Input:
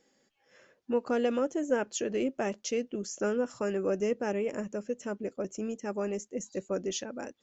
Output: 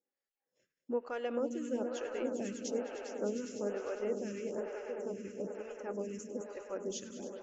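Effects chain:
noise gate −57 dBFS, range −17 dB
on a send: echo that builds up and dies away 101 ms, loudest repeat 5, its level −12.5 dB
on the sum: phaser with staggered stages 1.1 Hz
level −5.5 dB

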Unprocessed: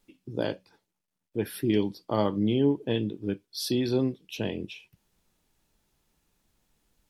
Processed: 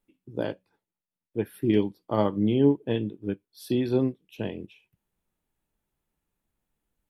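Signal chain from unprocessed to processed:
parametric band 5,100 Hz −10.5 dB 1.1 octaves
expander for the loud parts 1.5 to 1, over −45 dBFS
level +4 dB

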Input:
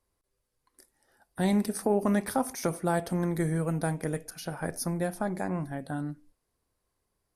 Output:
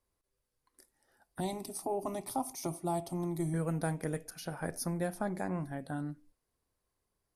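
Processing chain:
0:01.40–0:03.54: phaser with its sweep stopped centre 320 Hz, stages 8
level −4 dB

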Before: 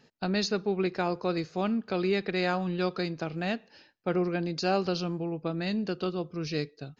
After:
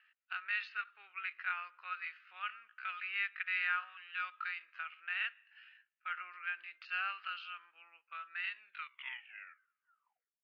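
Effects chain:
turntable brake at the end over 1.25 s
Chebyshev band-pass filter 1,300–2,900 Hz, order 3
tempo change 0.67×
level +1 dB

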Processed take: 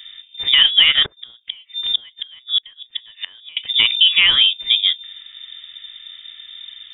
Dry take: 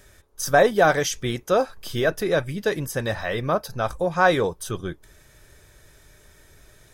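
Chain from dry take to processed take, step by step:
adaptive Wiener filter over 15 samples
downward compressor 6 to 1, threshold −22 dBFS, peak gain reduction 10.5 dB
0:01.05–0:03.57: gate with flip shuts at −21 dBFS, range −30 dB
voice inversion scrambler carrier 3,600 Hz
boost into a limiter +14.5 dB
level −1 dB

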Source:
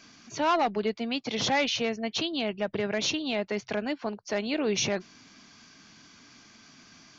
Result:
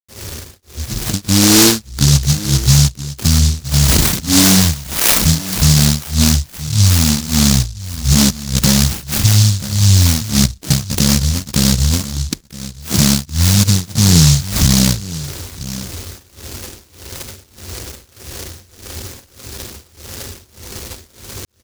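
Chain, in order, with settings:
low-pass filter 1,900 Hz 12 dB per octave
low-shelf EQ 160 Hz −10 dB
downward compressor 10 to 1, threshold −31 dBFS, peak gain reduction 9.5 dB
granular cloud 209 ms, grains 5 per second
change of speed 0.332×
pitch vibrato 1 Hz 54 cents
single-tap delay 965 ms −21 dB
boost into a limiter +33 dB
short delay modulated by noise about 5,300 Hz, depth 0.46 ms
level −2 dB

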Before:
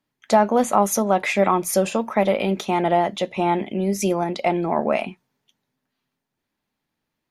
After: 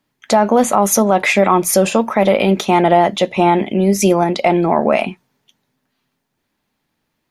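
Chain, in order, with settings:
boost into a limiter +9.5 dB
level −1 dB

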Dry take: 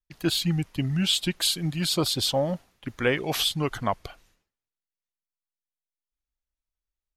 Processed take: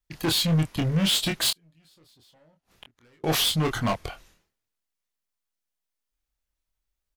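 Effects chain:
hard clipping −26.5 dBFS, distortion −8 dB
0:01.50–0:03.24: gate with flip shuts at −33 dBFS, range −36 dB
double-tracking delay 25 ms −5 dB
level +5 dB

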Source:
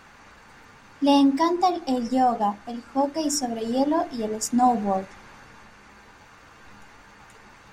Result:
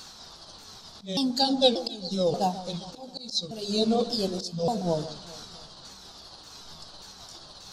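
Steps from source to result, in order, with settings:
pitch shifter swept by a sawtooth −7.5 semitones, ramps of 585 ms
high shelf with overshoot 3,000 Hz +12 dB, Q 3
volume swells 592 ms
delay that swaps between a low-pass and a high-pass 133 ms, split 1,000 Hz, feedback 63%, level −13.5 dB

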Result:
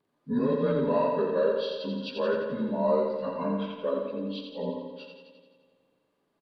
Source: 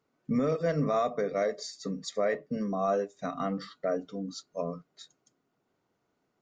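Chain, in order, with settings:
partials spread apart or drawn together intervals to 88%
phase shifter 0.85 Hz, delay 4.1 ms, feedback 21%
repeating echo 86 ms, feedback 59%, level −5 dB
spring reverb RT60 2 s, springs 41/55 ms, chirp 40 ms, DRR 10 dB
level +2 dB

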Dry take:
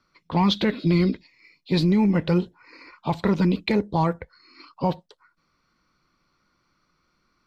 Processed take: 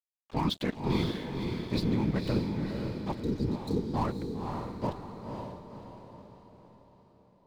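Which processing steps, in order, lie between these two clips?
random phases in short frames
dead-zone distortion −34.5 dBFS
healed spectral selection 0:03.25–0:03.91, 510–3,700 Hz before
on a send: feedback delay with all-pass diffusion 523 ms, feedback 48%, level −4 dB
on the sum: level −8.5 dB

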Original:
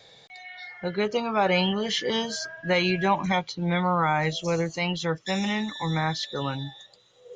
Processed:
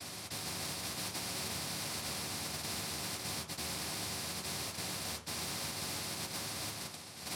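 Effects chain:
downward compressor, threshold −37 dBFS, peak gain reduction 18 dB
hard clipping −40 dBFS, distortion −8 dB
cochlear-implant simulation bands 1
convolution reverb RT60 0.35 s, pre-delay 3 ms, DRR −1 dB
every bin compressed towards the loudest bin 2 to 1
level −6.5 dB

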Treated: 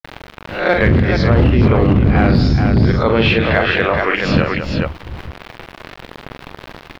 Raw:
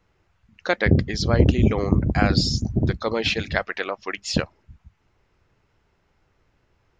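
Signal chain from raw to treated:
peak hold with a rise ahead of every peak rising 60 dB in 0.31 s
parametric band 2,800 Hz +3.5 dB 0.66 octaves
background noise pink −54 dBFS
in parallel at −9 dB: wrap-around overflow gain 10.5 dB
on the sum: bit reduction 7 bits
high-frequency loss of the air 360 metres
on a send: multi-tap delay 44/208/429 ms −8/−16.5/−7.5 dB
on the sum: boost into a limiter +6 dB
envelope flattener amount 50%
level −3 dB

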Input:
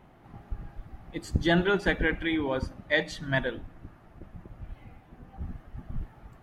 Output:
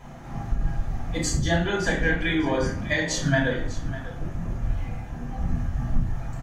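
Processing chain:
parametric band 6,500 Hz +13.5 dB 0.67 octaves
downward compressor 8 to 1, threshold −33 dBFS, peak gain reduction 14.5 dB
single-tap delay 599 ms −15.5 dB
convolution reverb RT60 0.55 s, pre-delay 3 ms, DRR −5 dB
level +4.5 dB

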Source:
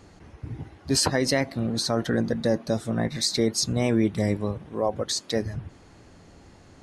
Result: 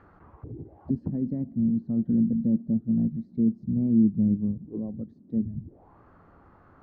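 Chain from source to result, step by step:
envelope-controlled low-pass 220–1,600 Hz down, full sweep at −28.5 dBFS
level −6 dB

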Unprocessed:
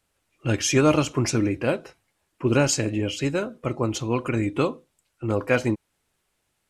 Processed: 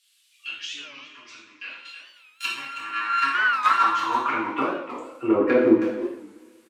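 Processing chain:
0:01.70–0:03.95: samples sorted by size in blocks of 32 samples
treble cut that deepens with the level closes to 530 Hz, closed at −18.5 dBFS
flat-topped bell 560 Hz −10 dB 1.3 octaves
high-pass filter sweep 3,400 Hz → 410 Hz, 0:02.10–0:05.39
soft clipping −17 dBFS, distortion −20 dB
far-end echo of a speakerphone 320 ms, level −9 dB
coupled-rooms reverb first 0.69 s, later 2 s, from −18 dB, DRR −6 dB
wow of a warped record 45 rpm, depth 160 cents
level +4 dB

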